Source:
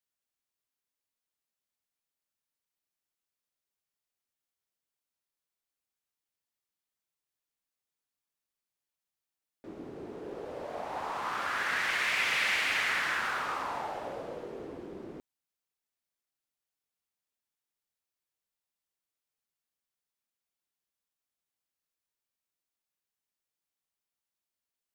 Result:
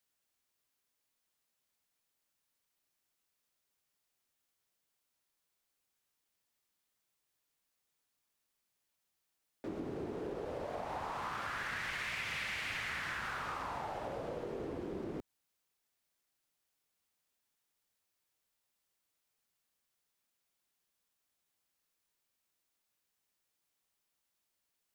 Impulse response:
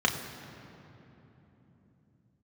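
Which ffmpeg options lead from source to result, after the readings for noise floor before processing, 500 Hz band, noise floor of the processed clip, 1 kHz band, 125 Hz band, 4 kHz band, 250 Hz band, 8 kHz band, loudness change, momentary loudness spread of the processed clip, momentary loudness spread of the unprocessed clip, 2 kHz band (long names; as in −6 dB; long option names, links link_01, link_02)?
below −85 dBFS, −1.5 dB, −84 dBFS, −6.0 dB, +4.0 dB, −9.5 dB, +1.0 dB, −9.5 dB, −9.0 dB, 5 LU, 18 LU, −9.5 dB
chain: -filter_complex "[0:a]acrossover=split=150[link_01][link_02];[link_02]acompressor=threshold=-45dB:ratio=6[link_03];[link_01][link_03]amix=inputs=2:normalize=0,volume=6.5dB"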